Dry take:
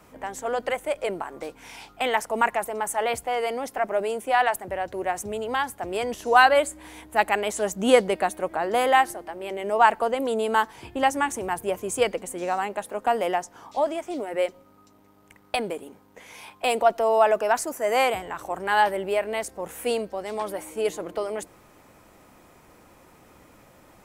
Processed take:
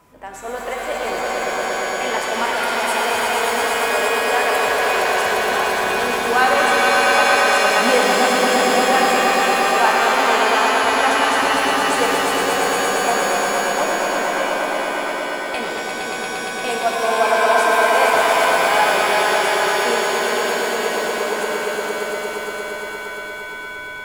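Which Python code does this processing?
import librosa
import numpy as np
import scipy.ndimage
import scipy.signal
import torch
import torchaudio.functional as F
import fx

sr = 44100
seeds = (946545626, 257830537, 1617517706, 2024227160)

y = x + 10.0 ** (-54.0 / 20.0) * np.sin(2.0 * np.pi * 1000.0 * np.arange(len(x)) / sr)
y = fx.echo_swell(y, sr, ms=116, loudest=5, wet_db=-4.5)
y = fx.rev_shimmer(y, sr, seeds[0], rt60_s=2.3, semitones=7, shimmer_db=-2, drr_db=1.5)
y = y * 10.0 ** (-2.0 / 20.0)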